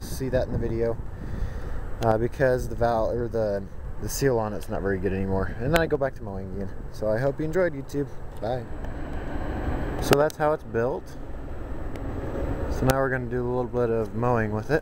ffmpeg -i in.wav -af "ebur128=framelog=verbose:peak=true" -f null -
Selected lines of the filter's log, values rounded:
Integrated loudness:
  I:         -27.1 LUFS
  Threshold: -37.3 LUFS
Loudness range:
  LRA:         3.0 LU
  Threshold: -47.4 LUFS
  LRA low:   -29.2 LUFS
  LRA high:  -26.3 LUFS
True peak:
  Peak:       -3.6 dBFS